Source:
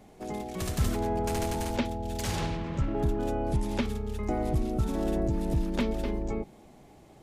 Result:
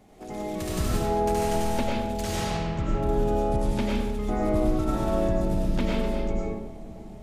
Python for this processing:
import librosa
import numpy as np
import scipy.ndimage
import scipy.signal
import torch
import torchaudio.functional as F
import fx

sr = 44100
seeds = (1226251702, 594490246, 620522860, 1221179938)

y = fx.peak_eq(x, sr, hz=1200.0, db=5.5, octaves=1.6, at=(4.32, 5.29))
y = fx.echo_filtered(y, sr, ms=535, feedback_pct=80, hz=860.0, wet_db=-18.0)
y = fx.rev_freeverb(y, sr, rt60_s=0.85, hf_ratio=0.8, predelay_ms=60, drr_db=-4.0)
y = y * librosa.db_to_amplitude(-2.0)